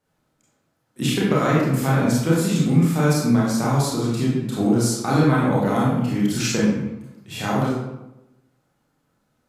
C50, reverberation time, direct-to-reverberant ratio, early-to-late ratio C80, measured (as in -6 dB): -0.5 dB, 0.95 s, -6.5 dB, 3.0 dB